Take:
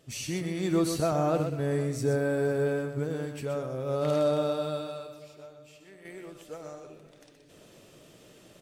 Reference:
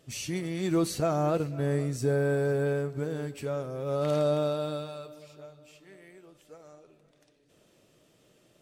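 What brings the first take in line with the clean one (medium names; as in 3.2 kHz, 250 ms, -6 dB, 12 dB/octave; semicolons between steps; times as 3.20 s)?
inverse comb 124 ms -7.5 dB; gain correction -8.5 dB, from 6.05 s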